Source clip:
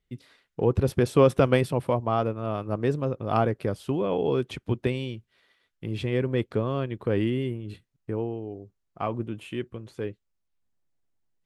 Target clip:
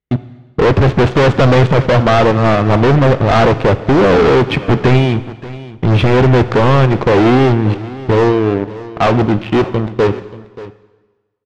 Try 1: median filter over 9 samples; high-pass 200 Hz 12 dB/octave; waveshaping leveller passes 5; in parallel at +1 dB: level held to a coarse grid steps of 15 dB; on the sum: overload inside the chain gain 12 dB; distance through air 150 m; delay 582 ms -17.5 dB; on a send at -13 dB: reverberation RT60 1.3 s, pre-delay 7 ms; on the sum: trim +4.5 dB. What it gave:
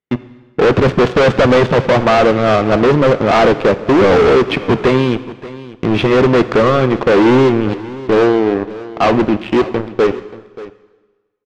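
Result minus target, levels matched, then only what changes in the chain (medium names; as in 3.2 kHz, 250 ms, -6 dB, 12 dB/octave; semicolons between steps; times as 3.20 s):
125 Hz band -7.0 dB
change: high-pass 58 Hz 12 dB/octave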